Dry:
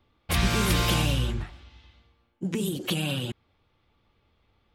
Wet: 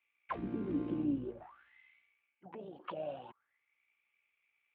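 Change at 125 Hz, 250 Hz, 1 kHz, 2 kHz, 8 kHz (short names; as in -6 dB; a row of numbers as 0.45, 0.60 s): -21.5 dB, -7.5 dB, -12.0 dB, -23.5 dB, under -40 dB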